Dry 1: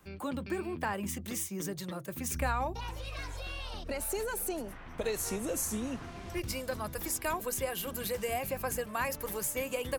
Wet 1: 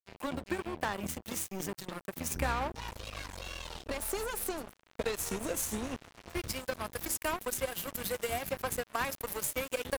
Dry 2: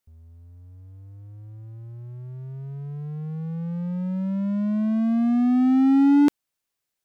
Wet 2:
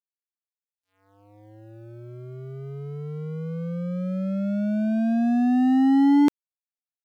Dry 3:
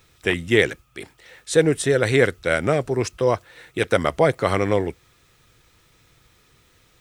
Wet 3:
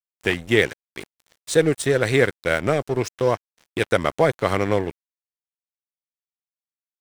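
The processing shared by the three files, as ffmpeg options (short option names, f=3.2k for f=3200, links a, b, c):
-filter_complex "[0:a]asplit=2[a][b];[b]acompressor=threshold=-34dB:ratio=8,volume=2.5dB[c];[a][c]amix=inputs=2:normalize=0,aeval=exprs='sgn(val(0))*max(abs(val(0))-0.0251,0)':c=same,volume=-1dB"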